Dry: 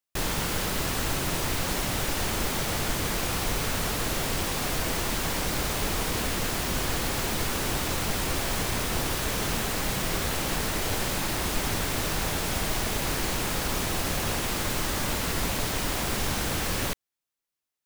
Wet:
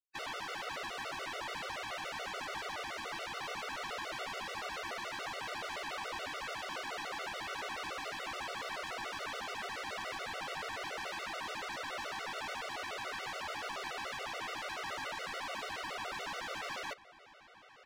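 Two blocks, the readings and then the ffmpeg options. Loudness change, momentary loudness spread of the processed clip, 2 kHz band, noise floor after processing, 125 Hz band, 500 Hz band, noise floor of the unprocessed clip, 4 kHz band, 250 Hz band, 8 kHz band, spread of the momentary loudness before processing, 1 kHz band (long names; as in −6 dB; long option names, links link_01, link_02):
−12.0 dB, 0 LU, −7.5 dB, −58 dBFS, −27.0 dB, −11.5 dB, below −85 dBFS, −11.5 dB, −20.5 dB, −20.0 dB, 0 LU, −7.0 dB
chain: -filter_complex "[0:a]highpass=530,afftfilt=real='re*gte(hypot(re,im),0.00708)':imag='im*gte(hypot(re,im),0.00708)':win_size=1024:overlap=0.75,lowpass=5700,alimiter=level_in=6.5dB:limit=-24dB:level=0:latency=1:release=438,volume=-6.5dB,asplit=2[link_01][link_02];[link_02]highpass=frequency=720:poles=1,volume=24dB,asoftclip=type=tanh:threshold=-30dB[link_03];[link_01][link_03]amix=inputs=2:normalize=0,lowpass=frequency=1800:poles=1,volume=-6dB,asplit=2[link_04][link_05];[link_05]adelay=1049,lowpass=frequency=3800:poles=1,volume=-16.5dB,asplit=2[link_06][link_07];[link_07]adelay=1049,lowpass=frequency=3800:poles=1,volume=0.16[link_08];[link_06][link_08]amix=inputs=2:normalize=0[link_09];[link_04][link_09]amix=inputs=2:normalize=0,afftfilt=real='re*gt(sin(2*PI*7*pts/sr)*(1-2*mod(floor(b*sr/1024/380),2)),0)':imag='im*gt(sin(2*PI*7*pts/sr)*(1-2*mod(floor(b*sr/1024/380),2)),0)':win_size=1024:overlap=0.75,volume=1dB"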